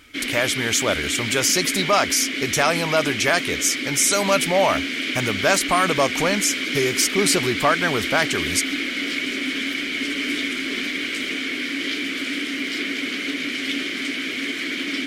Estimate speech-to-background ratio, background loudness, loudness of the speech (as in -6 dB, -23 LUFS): 3.5 dB, -24.5 LUFS, -21.0 LUFS